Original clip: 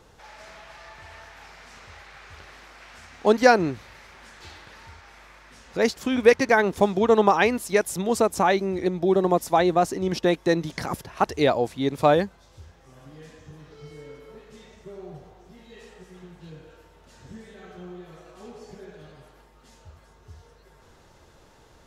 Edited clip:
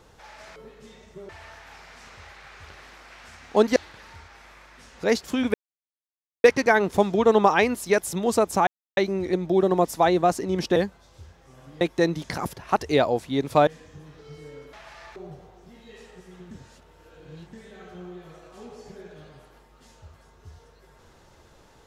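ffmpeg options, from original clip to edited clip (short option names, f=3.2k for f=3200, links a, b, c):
-filter_complex "[0:a]asplit=13[a][b][c][d][e][f][g][h][i][j][k][l][m];[a]atrim=end=0.562[n];[b]atrim=start=14.258:end=14.992[o];[c]atrim=start=0.988:end=3.462[p];[d]atrim=start=4.488:end=6.27,asetpts=PTS-STARTPTS,afade=t=out:st=1.778:d=0.004:c=hsin,apad=pad_dur=0.9[q];[e]atrim=start=6.27:end=8.5,asetpts=PTS-STARTPTS,afade=t=in:d=0.004:c=hsin,afade=t=out:st=2.226:d=0.004:c=hsin,apad=pad_dur=0.3[r];[f]atrim=start=8.5:end=10.292,asetpts=PTS-STARTPTS,afade=t=in:d=0.004:c=hsin[s];[g]atrim=start=12.148:end=13.202[t];[h]atrim=start=10.288:end=12.152[u];[i]atrim=start=13.198:end=14.262[v];[j]atrim=start=0.558:end=0.992[w];[k]atrim=start=14.988:end=16.342[x];[l]atrim=start=16.338:end=17.362,asetpts=PTS-STARTPTS,areverse[y];[m]atrim=start=17.358[z];[n][o]acrossfade=d=0.004:c1=hsin:c2=hsin[aa];[aa][p]acrossfade=d=0.004:c1=hsin:c2=hsin[ab];[q][r][s]concat=n=3:v=0:a=1[ac];[ab][ac]acrossfade=d=0.004:c1=hsin:c2=hsin[ad];[ad][t]acrossfade=d=0.004:c1=hsin:c2=hsin[ae];[ae][u]acrossfade=d=0.004:c1=hsin:c2=hsin[af];[af][v]acrossfade=d=0.004:c1=hsin:c2=hsin[ag];[ag][w]acrossfade=d=0.004:c1=hsin:c2=hsin[ah];[ah][x]acrossfade=d=0.004:c1=hsin:c2=hsin[ai];[ai][y]acrossfade=d=0.004:c1=hsin:c2=hsin[aj];[aj][z]acrossfade=d=0.004:c1=hsin:c2=hsin"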